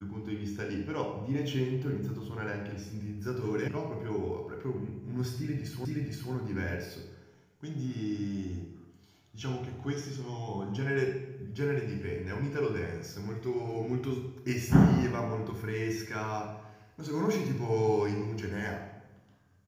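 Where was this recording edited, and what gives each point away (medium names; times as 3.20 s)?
3.68 s: sound stops dead
5.85 s: repeat of the last 0.47 s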